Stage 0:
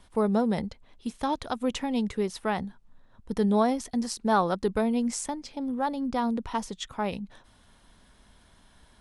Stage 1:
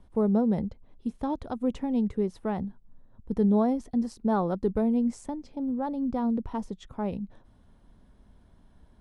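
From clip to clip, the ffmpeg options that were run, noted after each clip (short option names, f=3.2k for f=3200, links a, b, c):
-af "tiltshelf=f=970:g=9.5,volume=-6.5dB"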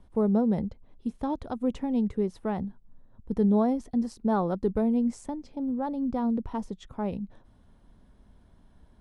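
-af anull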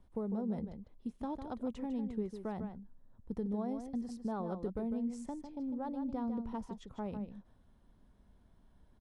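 -filter_complex "[0:a]acompressor=threshold=-26dB:ratio=6,asplit=2[a][b];[b]adelay=151.6,volume=-8dB,highshelf=f=4k:g=-3.41[c];[a][c]amix=inputs=2:normalize=0,volume=-8dB"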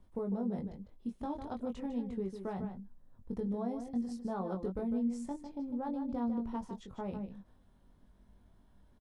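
-filter_complex "[0:a]asplit=2[a][b];[b]adelay=21,volume=-4.5dB[c];[a][c]amix=inputs=2:normalize=0"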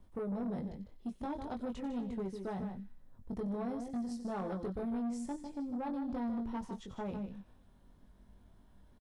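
-filter_complex "[0:a]acrossover=split=1600[a][b];[a]asoftclip=type=tanh:threshold=-35dB[c];[b]aecho=1:1:92|184|276|368|460|552:0.266|0.144|0.0776|0.0419|0.0226|0.0122[d];[c][d]amix=inputs=2:normalize=0,volume=2dB"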